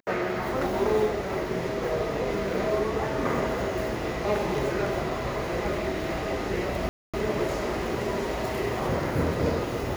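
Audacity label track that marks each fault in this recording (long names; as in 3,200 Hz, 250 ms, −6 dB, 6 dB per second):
6.890000	7.140000	drop-out 246 ms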